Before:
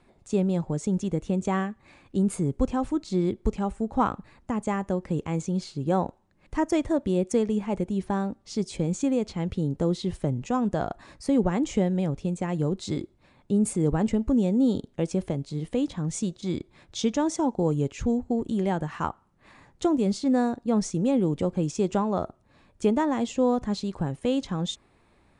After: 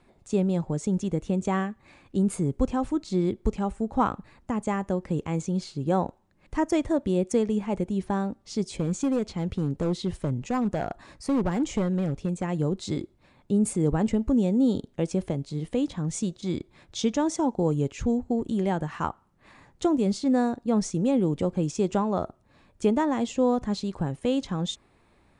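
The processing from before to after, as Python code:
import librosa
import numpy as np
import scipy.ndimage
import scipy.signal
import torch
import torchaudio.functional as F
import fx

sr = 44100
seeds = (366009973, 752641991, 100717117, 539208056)

y = fx.clip_hard(x, sr, threshold_db=-20.0, at=(8.77, 12.43))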